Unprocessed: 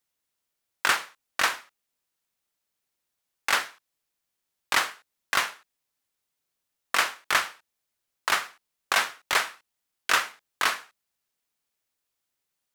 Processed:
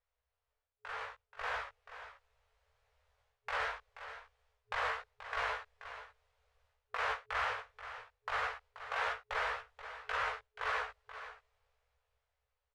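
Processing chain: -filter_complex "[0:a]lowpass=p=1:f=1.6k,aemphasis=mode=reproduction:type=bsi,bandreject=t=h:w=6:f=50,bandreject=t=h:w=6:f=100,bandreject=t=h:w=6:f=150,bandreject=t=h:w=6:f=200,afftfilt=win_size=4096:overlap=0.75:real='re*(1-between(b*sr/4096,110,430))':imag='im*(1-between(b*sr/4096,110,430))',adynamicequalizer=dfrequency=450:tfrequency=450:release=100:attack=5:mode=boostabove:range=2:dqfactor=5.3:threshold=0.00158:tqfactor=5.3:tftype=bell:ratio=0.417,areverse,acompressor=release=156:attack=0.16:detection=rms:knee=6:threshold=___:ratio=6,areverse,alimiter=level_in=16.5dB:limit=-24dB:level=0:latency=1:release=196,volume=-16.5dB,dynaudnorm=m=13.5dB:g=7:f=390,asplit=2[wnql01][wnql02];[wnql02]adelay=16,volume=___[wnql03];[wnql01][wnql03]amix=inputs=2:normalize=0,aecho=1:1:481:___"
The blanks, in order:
-41dB, -5dB, 0.251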